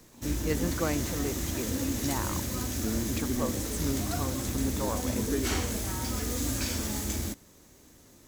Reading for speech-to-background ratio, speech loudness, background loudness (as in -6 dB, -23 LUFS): -4.5 dB, -36.0 LUFS, -31.5 LUFS